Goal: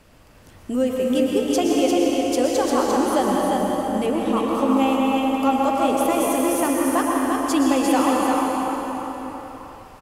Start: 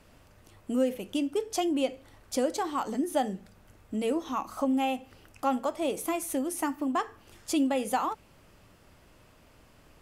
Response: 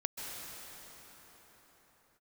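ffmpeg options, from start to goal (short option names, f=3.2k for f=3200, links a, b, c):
-filter_complex "[0:a]asettb=1/sr,asplit=3[a][b][c];[a]atrim=end=4.064[d];[b]atrim=start=4.06:end=4.55,asetpts=PTS-STARTPTS,afade=t=in:d=0.004:c=qsin,afade=t=out:st=0.486:d=0.004:c=qsin,equalizer=f=8.6k:t=o:w=1:g=-13.5[e];[c]atrim=start=4.546[f];[d][e]acrossfade=d=0.004:c1=hsin:c2=qsin[g];[g][f]acrossfade=d=0.004:c1=qsin:c2=hsin,aecho=1:1:348:0.631[h];[1:a]atrim=start_sample=2205,asetrate=52920,aresample=44100[i];[h][i]afir=irnorm=-1:irlink=0,volume=8dB"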